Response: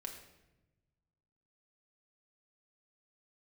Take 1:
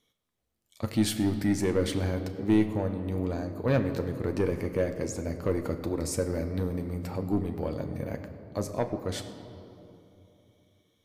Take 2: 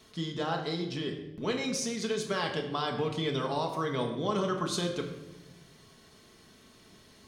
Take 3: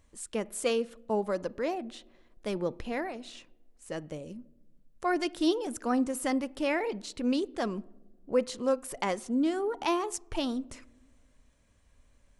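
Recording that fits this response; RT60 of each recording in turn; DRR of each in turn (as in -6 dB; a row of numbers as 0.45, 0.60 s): 2; 3.0 s, 1.0 s, not exponential; 5.5, 1.5, 18.5 dB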